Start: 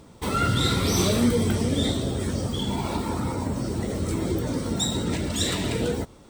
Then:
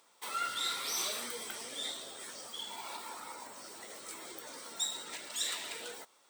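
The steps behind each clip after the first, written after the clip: high-pass 960 Hz 12 dB/octave; treble shelf 8.6 kHz +5 dB; trim -8.5 dB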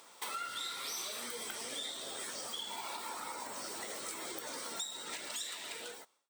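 fade out at the end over 1.25 s; compression 6:1, threshold -48 dBFS, peak gain reduction 17 dB; trim +9 dB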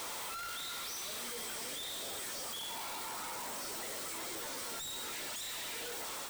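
one-bit comparator; trim +1 dB

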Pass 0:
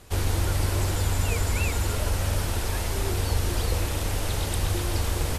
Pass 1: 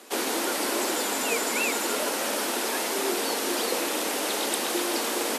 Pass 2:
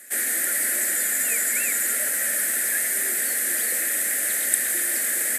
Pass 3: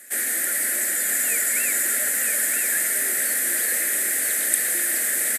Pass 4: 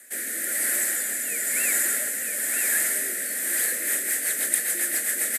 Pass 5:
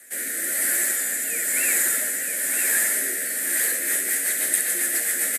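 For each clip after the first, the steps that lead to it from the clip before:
steep high-pass 230 Hz 48 dB/octave; trim +5 dB
FFT filter 110 Hz 0 dB, 190 Hz -7 dB, 290 Hz -13 dB, 430 Hz -16 dB, 610 Hz -8 dB, 990 Hz -25 dB, 1.8 kHz +10 dB, 2.8 kHz -10 dB, 5.5 kHz -8 dB, 8.2 kHz +10 dB; trim +1 dB
delay 961 ms -5 dB
rotary cabinet horn 1 Hz, later 7.5 Hz, at 3.42 s
early reflections 11 ms -4.5 dB, 67 ms -6 dB

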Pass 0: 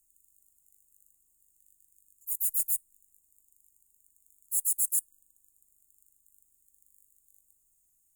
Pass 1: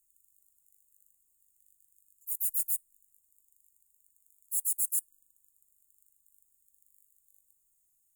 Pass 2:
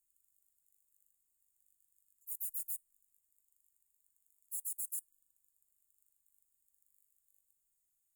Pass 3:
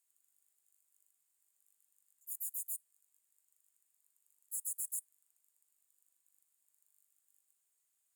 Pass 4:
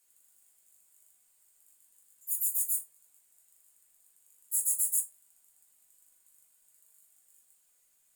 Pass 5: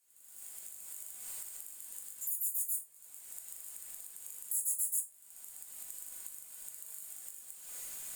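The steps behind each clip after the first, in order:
treble shelf 7.4 kHz +6 dB; trim -7 dB
peak limiter -21 dBFS, peak gain reduction 4 dB; trim -8 dB
frequency weighting A; trim +4.5 dB
simulated room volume 140 m³, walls furnished, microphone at 1.9 m; trim +8 dB
recorder AGC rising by 50 dB/s; trim -5 dB

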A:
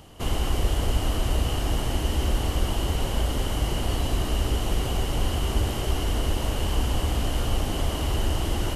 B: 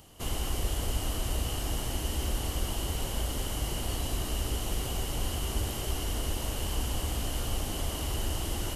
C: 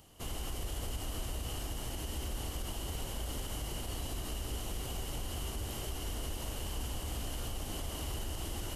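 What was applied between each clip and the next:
treble shelf 4.9 kHz +10.5 dB; trim -7.5 dB
peak limiter -24 dBFS, peak gain reduction 6.5 dB; trim -5 dB

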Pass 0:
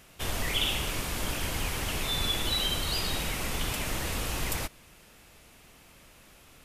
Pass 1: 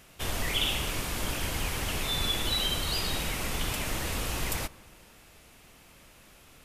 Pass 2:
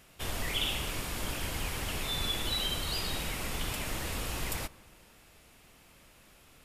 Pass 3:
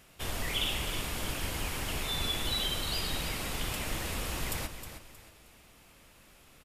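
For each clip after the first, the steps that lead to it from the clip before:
bucket-brigade echo 76 ms, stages 1024, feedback 81%, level -23.5 dB
band-stop 6.1 kHz, Q 26; trim -3.5 dB
feedback delay 314 ms, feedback 33%, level -10 dB

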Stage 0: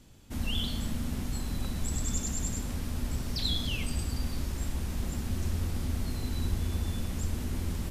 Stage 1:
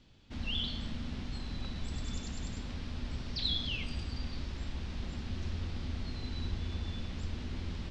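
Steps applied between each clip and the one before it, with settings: low-pass 4.3 kHz 24 dB/octave; treble shelf 3.1 kHz +11 dB; trim -6 dB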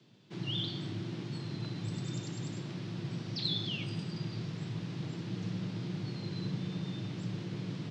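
frequency shift +100 Hz; trim -1 dB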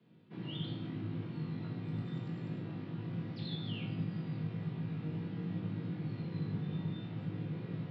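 distance through air 430 m; on a send: flutter echo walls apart 3.3 m, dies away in 0.27 s; on the sum: simulated room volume 560 m³, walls furnished, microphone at 1.8 m; trim -4.5 dB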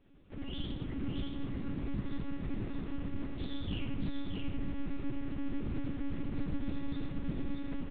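monotone LPC vocoder at 8 kHz 280 Hz; delay 625 ms -4.5 dB; loudspeaker Doppler distortion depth 0.21 ms; trim +2.5 dB

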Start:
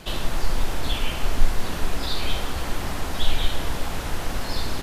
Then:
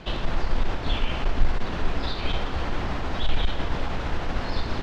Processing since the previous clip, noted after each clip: Chebyshev shaper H 2 -12 dB, 5 -21 dB, 8 -26 dB, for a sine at -3 dBFS; distance through air 190 m; trim -1.5 dB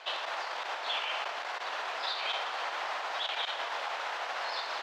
high-pass 650 Hz 24 dB/octave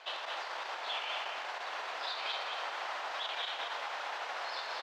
delay 223 ms -5.5 dB; trim -4.5 dB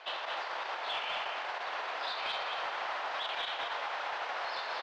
in parallel at -6.5 dB: wavefolder -32 dBFS; on the sum: distance through air 110 m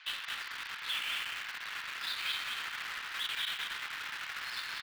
high-pass 1.5 kHz 24 dB/octave; in parallel at -8.5 dB: word length cut 6-bit, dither none

